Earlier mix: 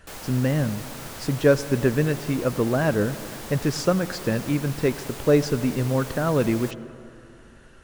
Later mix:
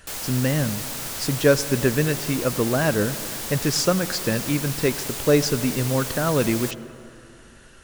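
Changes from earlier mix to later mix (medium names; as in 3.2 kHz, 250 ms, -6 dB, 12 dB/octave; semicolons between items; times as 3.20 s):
background: send +7.0 dB; master: add treble shelf 2.6 kHz +10 dB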